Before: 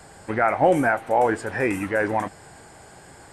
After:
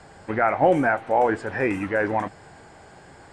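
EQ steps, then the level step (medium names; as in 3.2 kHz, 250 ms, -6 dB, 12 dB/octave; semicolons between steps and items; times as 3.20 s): distance through air 88 m; hum notches 60/120 Hz; 0.0 dB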